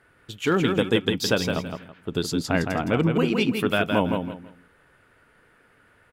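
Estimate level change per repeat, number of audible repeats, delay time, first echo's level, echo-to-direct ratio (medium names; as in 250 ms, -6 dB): -12.0 dB, 3, 164 ms, -5.5 dB, -5.0 dB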